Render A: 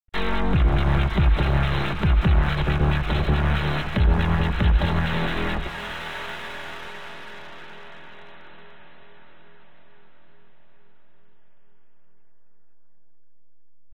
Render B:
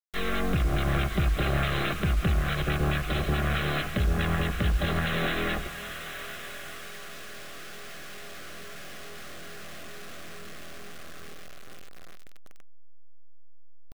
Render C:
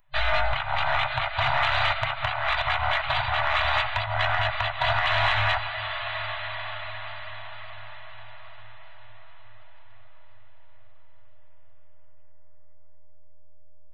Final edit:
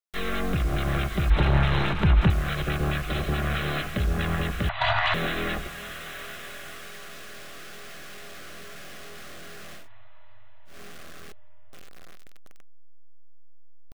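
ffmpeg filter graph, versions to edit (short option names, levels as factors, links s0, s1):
-filter_complex "[2:a]asplit=3[s0][s1][s2];[1:a]asplit=5[s3][s4][s5][s6][s7];[s3]atrim=end=1.302[s8];[0:a]atrim=start=1.298:end=2.302[s9];[s4]atrim=start=2.298:end=4.692[s10];[s0]atrim=start=4.688:end=5.142[s11];[s5]atrim=start=5.138:end=9.89[s12];[s1]atrim=start=9.73:end=10.81[s13];[s6]atrim=start=10.65:end=11.322[s14];[s2]atrim=start=11.318:end=11.732[s15];[s7]atrim=start=11.728[s16];[s8][s9]acrossfade=d=0.004:c1=hsin:c2=hsin[s17];[s17][s10]acrossfade=d=0.004:c1=hsin:c2=hsin[s18];[s18][s11]acrossfade=d=0.004:c1=hsin:c2=hsin[s19];[s19][s12]acrossfade=d=0.004:c1=hsin:c2=hsin[s20];[s20][s13]acrossfade=d=0.16:c1=tri:c2=tri[s21];[s21][s14]acrossfade=d=0.16:c1=tri:c2=tri[s22];[s22][s15]acrossfade=d=0.004:c1=hsin:c2=hsin[s23];[s23][s16]acrossfade=d=0.004:c1=hsin:c2=hsin"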